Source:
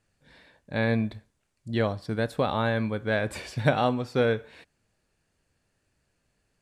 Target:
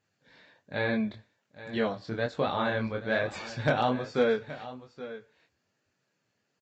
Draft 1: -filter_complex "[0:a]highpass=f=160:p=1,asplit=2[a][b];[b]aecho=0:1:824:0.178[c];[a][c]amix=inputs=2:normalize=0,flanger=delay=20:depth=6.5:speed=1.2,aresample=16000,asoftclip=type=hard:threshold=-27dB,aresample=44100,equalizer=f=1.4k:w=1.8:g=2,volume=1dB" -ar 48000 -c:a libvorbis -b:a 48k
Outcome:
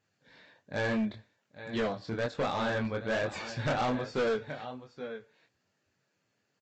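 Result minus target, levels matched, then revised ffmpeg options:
hard clip: distortion +19 dB
-filter_complex "[0:a]highpass=f=160:p=1,asplit=2[a][b];[b]aecho=0:1:824:0.178[c];[a][c]amix=inputs=2:normalize=0,flanger=delay=20:depth=6.5:speed=1.2,aresample=16000,asoftclip=type=hard:threshold=-15.5dB,aresample=44100,equalizer=f=1.4k:w=1.8:g=2,volume=1dB" -ar 48000 -c:a libvorbis -b:a 48k

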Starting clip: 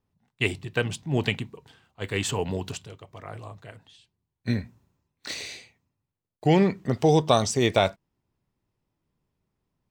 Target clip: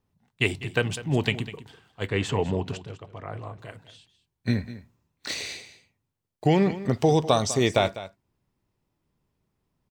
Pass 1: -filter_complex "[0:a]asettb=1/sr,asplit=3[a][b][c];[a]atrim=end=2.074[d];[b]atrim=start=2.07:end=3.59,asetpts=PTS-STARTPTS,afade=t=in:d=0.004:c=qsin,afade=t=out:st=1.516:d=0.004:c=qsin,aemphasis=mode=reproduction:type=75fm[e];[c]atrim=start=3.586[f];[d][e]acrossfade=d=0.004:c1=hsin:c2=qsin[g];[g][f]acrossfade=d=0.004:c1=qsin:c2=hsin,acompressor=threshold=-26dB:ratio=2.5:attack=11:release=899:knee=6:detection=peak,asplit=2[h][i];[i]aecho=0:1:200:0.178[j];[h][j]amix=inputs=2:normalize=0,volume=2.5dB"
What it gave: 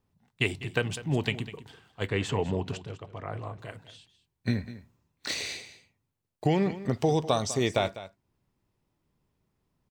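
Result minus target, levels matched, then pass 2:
compressor: peak gain reduction +5 dB
-filter_complex "[0:a]asettb=1/sr,asplit=3[a][b][c];[a]atrim=end=2.074[d];[b]atrim=start=2.07:end=3.59,asetpts=PTS-STARTPTS,afade=t=in:d=0.004:c=qsin,afade=t=out:st=1.516:d=0.004:c=qsin,aemphasis=mode=reproduction:type=75fm[e];[c]atrim=start=3.586[f];[d][e]acrossfade=d=0.004:c1=hsin:c2=qsin[g];[g][f]acrossfade=d=0.004:c1=qsin:c2=hsin,acompressor=threshold=-18dB:ratio=2.5:attack=11:release=899:knee=6:detection=peak,asplit=2[h][i];[i]aecho=0:1:200:0.178[j];[h][j]amix=inputs=2:normalize=0,volume=2.5dB"

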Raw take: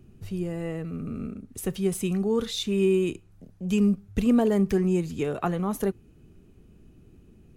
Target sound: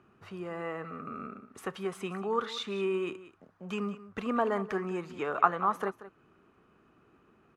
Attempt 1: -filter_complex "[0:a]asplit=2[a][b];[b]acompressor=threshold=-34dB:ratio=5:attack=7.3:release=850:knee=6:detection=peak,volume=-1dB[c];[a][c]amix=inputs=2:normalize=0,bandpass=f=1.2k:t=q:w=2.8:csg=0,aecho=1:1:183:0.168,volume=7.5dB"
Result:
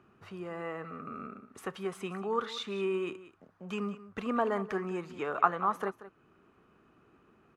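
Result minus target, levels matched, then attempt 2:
compressor: peak gain reduction +5.5 dB
-filter_complex "[0:a]asplit=2[a][b];[b]acompressor=threshold=-27dB:ratio=5:attack=7.3:release=850:knee=6:detection=peak,volume=-1dB[c];[a][c]amix=inputs=2:normalize=0,bandpass=f=1.2k:t=q:w=2.8:csg=0,aecho=1:1:183:0.168,volume=7.5dB"

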